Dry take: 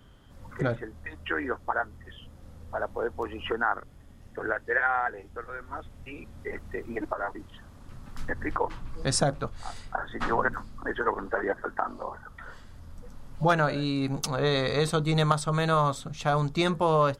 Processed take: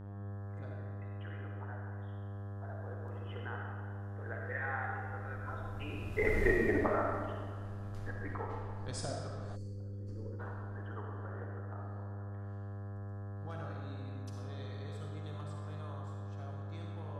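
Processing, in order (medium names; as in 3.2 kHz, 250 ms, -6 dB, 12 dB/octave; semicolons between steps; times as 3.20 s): Doppler pass-by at 6.38 s, 15 m/s, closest 2.2 m; mains buzz 100 Hz, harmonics 18, -53 dBFS -8 dB/octave; algorithmic reverb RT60 1.7 s, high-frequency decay 0.75×, pre-delay 15 ms, DRR -1 dB; time-frequency box 9.56–10.40 s, 570–4200 Hz -23 dB; trim +6.5 dB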